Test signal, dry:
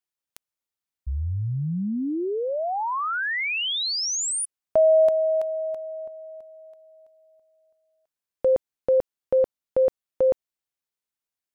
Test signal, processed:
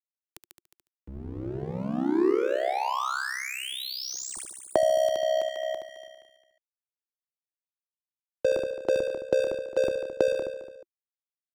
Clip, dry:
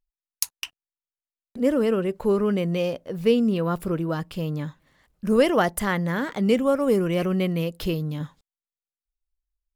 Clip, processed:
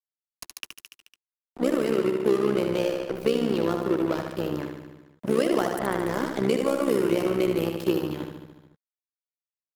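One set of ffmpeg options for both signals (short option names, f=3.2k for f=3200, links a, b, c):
-filter_complex "[0:a]highpass=73,aeval=exprs='sgn(val(0))*max(abs(val(0))-0.0237,0)':c=same,asplit=2[a][b];[b]aecho=0:1:72|144|216|288|360|432|504:0.501|0.286|0.163|0.0928|0.0529|0.0302|0.0172[c];[a][c]amix=inputs=2:normalize=0,acrossover=split=230|1300|4500[d][e][f][g];[d]acompressor=threshold=-43dB:ratio=4[h];[e]acompressor=threshold=-28dB:ratio=4[i];[f]acompressor=threshold=-42dB:ratio=4[j];[g]acompressor=threshold=-43dB:ratio=4[k];[h][i][j][k]amix=inputs=4:normalize=0,tremolo=f=65:d=0.824,acompressor=mode=upward:threshold=-40dB:ratio=1.5:attack=0.55:release=103:knee=2.83:detection=peak,equalizer=f=350:w=3.4:g=8.5,volume=6.5dB"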